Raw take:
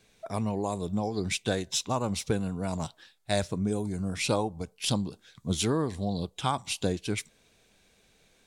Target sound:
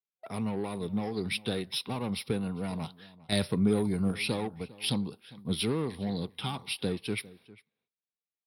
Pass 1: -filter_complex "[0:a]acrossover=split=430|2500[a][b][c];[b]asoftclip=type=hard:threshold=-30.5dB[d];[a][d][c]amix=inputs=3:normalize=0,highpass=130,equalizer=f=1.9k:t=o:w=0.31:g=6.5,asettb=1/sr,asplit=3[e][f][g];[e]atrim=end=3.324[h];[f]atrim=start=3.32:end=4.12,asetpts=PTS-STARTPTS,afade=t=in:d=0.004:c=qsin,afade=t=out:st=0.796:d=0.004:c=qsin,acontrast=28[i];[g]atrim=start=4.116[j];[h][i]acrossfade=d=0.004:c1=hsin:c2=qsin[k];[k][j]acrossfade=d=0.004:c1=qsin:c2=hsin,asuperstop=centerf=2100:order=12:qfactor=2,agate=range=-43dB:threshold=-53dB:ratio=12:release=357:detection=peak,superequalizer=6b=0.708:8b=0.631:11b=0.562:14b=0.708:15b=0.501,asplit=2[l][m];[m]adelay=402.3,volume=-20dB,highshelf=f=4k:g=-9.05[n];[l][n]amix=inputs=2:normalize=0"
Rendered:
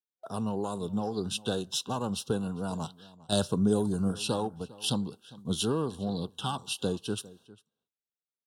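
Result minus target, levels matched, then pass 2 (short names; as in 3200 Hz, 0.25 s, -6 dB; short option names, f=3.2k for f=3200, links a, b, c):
2000 Hz band -7.0 dB; hard clip: distortion -5 dB
-filter_complex "[0:a]acrossover=split=430|2500[a][b][c];[b]asoftclip=type=hard:threshold=-38dB[d];[a][d][c]amix=inputs=3:normalize=0,highpass=130,equalizer=f=1.9k:t=o:w=0.31:g=6.5,asettb=1/sr,asplit=3[e][f][g];[e]atrim=end=3.324[h];[f]atrim=start=3.32:end=4.12,asetpts=PTS-STARTPTS,afade=t=in:d=0.004:c=qsin,afade=t=out:st=0.796:d=0.004:c=qsin,acontrast=28[i];[g]atrim=start=4.116[j];[h][i]acrossfade=d=0.004:c1=hsin:c2=qsin[k];[k][j]acrossfade=d=0.004:c1=qsin:c2=hsin,asuperstop=centerf=7000:order=12:qfactor=2,agate=range=-43dB:threshold=-53dB:ratio=12:release=357:detection=peak,superequalizer=6b=0.708:8b=0.631:11b=0.562:14b=0.708:15b=0.501,asplit=2[l][m];[m]adelay=402.3,volume=-20dB,highshelf=f=4k:g=-9.05[n];[l][n]amix=inputs=2:normalize=0"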